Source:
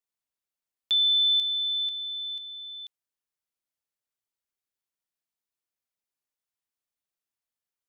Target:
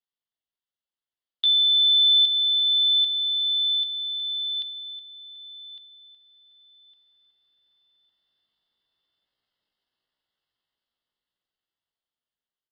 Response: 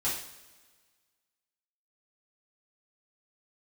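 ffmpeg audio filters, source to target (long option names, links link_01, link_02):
-filter_complex "[0:a]equalizer=frequency=3200:width=3.1:gain=7.5,dynaudnorm=framelen=530:gausssize=7:maxgain=15.5dB,atempo=0.62,asuperstop=centerf=2400:order=4:qfactor=5.8,asplit=2[link_01][link_02];[link_02]adelay=1157,lowpass=frequency=2500:poles=1,volume=-9dB,asplit=2[link_03][link_04];[link_04]adelay=1157,lowpass=frequency=2500:poles=1,volume=0.36,asplit=2[link_05][link_06];[link_06]adelay=1157,lowpass=frequency=2500:poles=1,volume=0.36,asplit=2[link_07][link_08];[link_08]adelay=1157,lowpass=frequency=2500:poles=1,volume=0.36[link_09];[link_01][link_03][link_05][link_07][link_09]amix=inputs=5:normalize=0,asplit=2[link_10][link_11];[1:a]atrim=start_sample=2205,afade=type=out:start_time=0.42:duration=0.01,atrim=end_sample=18963,adelay=35[link_12];[link_11][link_12]afir=irnorm=-1:irlink=0,volume=-27dB[link_13];[link_10][link_13]amix=inputs=2:normalize=0,aresample=11025,aresample=44100,volume=-3.5dB"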